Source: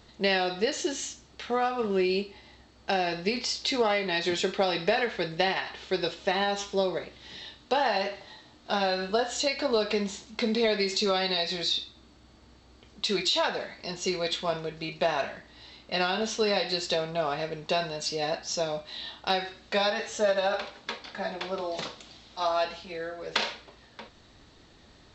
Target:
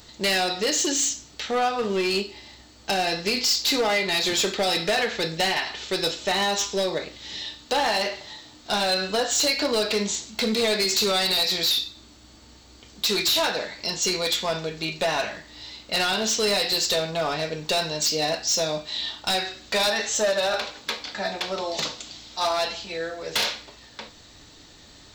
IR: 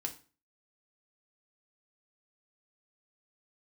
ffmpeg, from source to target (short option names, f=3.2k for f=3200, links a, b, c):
-filter_complex "[0:a]aemphasis=mode=production:type=75fm,volume=23dB,asoftclip=hard,volume=-23dB,asplit=2[a][b];[1:a]atrim=start_sample=2205[c];[b][c]afir=irnorm=-1:irlink=0,volume=-2.5dB[d];[a][d]amix=inputs=2:normalize=0"